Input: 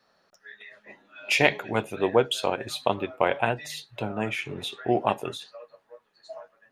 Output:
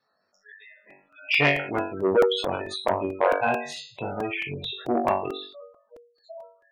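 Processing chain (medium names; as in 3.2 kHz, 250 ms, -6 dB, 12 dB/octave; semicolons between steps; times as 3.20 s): companding laws mixed up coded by A; flutter echo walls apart 3.6 m, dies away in 0.49 s; spectral gate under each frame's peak -15 dB strong; crackling interface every 0.22 s, samples 128, repeat, from 0.90 s; transformer saturation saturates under 1.1 kHz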